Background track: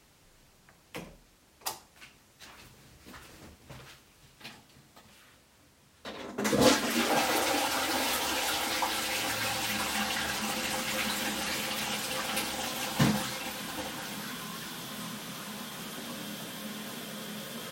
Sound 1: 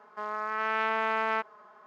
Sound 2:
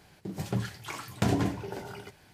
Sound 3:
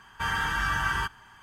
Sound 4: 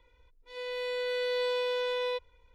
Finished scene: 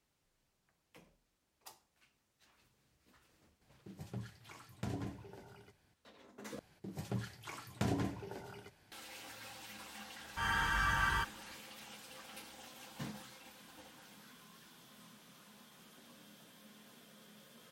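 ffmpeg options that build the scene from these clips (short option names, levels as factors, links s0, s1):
-filter_complex "[2:a]asplit=2[s0][s1];[0:a]volume=0.106[s2];[s0]lowshelf=f=130:g=5.5[s3];[3:a]dynaudnorm=f=150:g=3:m=3.16[s4];[s2]asplit=2[s5][s6];[s5]atrim=end=6.594[s7];[s1]atrim=end=2.33,asetpts=PTS-STARTPTS,volume=0.355[s8];[s6]atrim=start=8.916[s9];[s3]atrim=end=2.33,asetpts=PTS-STARTPTS,volume=0.15,afade=t=in:d=0.004:c=hsin,afade=t=out:st=2.326:d=0.004:c=hsin,adelay=159201S[s10];[s4]atrim=end=1.42,asetpts=PTS-STARTPTS,volume=0.168,afade=t=in:d=0.004:c=hsin,afade=t=out:st=1.416:d=0.004:c=hsin,adelay=10170[s11];[s7][s8]acrossfade=d=0.004:c1=hsin:c2=hsin[s12];[s12][s9]acrossfade=d=0.004:c1=hsin:c2=hsin[s13];[s13][s10][s11]amix=inputs=3:normalize=0"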